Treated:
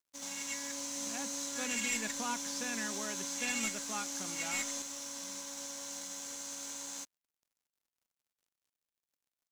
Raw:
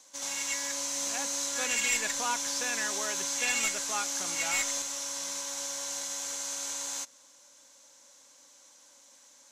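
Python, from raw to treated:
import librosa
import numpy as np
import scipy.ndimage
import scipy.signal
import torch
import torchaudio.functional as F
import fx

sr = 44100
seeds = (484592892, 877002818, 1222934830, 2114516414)

y = fx.peak_eq(x, sr, hz=220.0, db=15.0, octaves=0.84)
y = np.sign(y) * np.maximum(np.abs(y) - 10.0 ** (-49.0 / 20.0), 0.0)
y = y * librosa.db_to_amplitude(-6.0)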